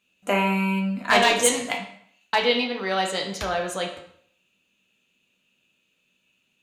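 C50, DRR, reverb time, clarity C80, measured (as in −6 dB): 7.5 dB, 1.0 dB, 0.60 s, 10.0 dB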